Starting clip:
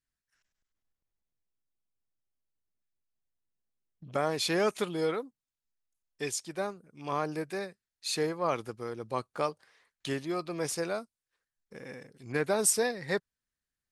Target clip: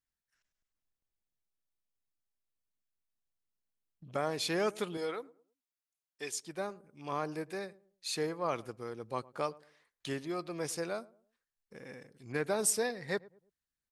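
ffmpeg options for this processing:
ffmpeg -i in.wav -filter_complex "[0:a]asettb=1/sr,asplit=3[link_01][link_02][link_03];[link_01]atrim=end=4.974[link_04];[link_02]atrim=start=4.97:end=6.35,asetpts=PTS-STARTPTS,afade=type=in:duration=0.004:curve=qsin,afade=type=out:start_time=1.376:duration=0.004:curve=qsin,highpass=frequency=450:poles=1[link_05];[link_03]atrim=start=6.346[link_06];[link_04][link_05]acrossfade=duration=0.004:curve1=hsin:curve2=qsin[link_07];[link_07][link_06]acrossfade=duration=0.004:curve1=qsin:curve2=hsin,asplit=2[link_08][link_09];[link_09]adelay=107,lowpass=frequency=830:poles=1,volume=-20dB,asplit=2[link_10][link_11];[link_11]adelay=107,lowpass=frequency=830:poles=1,volume=0.38,asplit=2[link_12][link_13];[link_13]adelay=107,lowpass=frequency=830:poles=1,volume=0.38[link_14];[link_08][link_10][link_12][link_14]amix=inputs=4:normalize=0,volume=-4dB" out.wav

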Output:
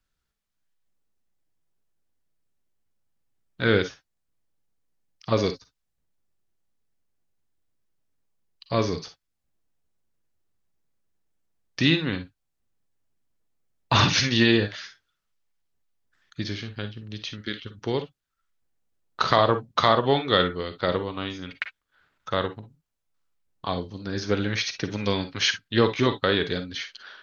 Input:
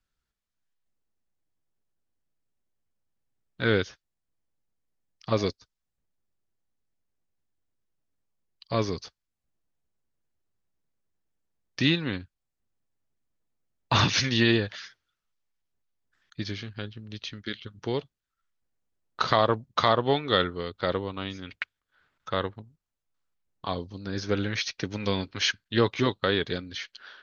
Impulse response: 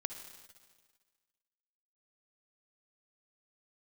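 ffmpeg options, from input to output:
-filter_complex "[1:a]atrim=start_sample=2205,atrim=end_sample=4410,asetrate=57330,aresample=44100[link_01];[0:a][link_01]afir=irnorm=-1:irlink=0,volume=6.5dB"

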